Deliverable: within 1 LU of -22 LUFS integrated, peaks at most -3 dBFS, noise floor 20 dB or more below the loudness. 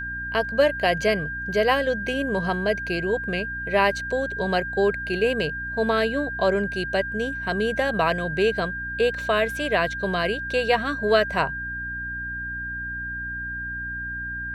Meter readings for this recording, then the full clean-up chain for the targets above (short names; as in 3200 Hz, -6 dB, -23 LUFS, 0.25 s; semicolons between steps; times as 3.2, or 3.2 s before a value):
hum 60 Hz; harmonics up to 300 Hz; hum level -36 dBFS; steady tone 1600 Hz; tone level -29 dBFS; loudness -24.5 LUFS; peak -6.0 dBFS; loudness target -22.0 LUFS
-> de-hum 60 Hz, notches 5; notch 1600 Hz, Q 30; gain +2.5 dB